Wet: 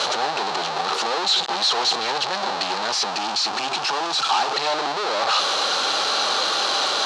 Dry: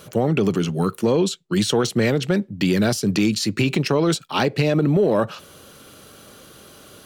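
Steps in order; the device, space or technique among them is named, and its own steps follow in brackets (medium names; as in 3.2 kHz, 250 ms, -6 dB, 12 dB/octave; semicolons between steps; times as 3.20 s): home computer beeper (one-bit comparator; cabinet simulation 610–6000 Hz, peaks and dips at 810 Hz +10 dB, 1.2 kHz +4 dB, 2.1 kHz -4 dB, 4.1 kHz +9 dB); 3.10–4.54 s: graphic EQ with 31 bands 500 Hz -7 dB, 2 kHz -5 dB, 4 kHz -5 dB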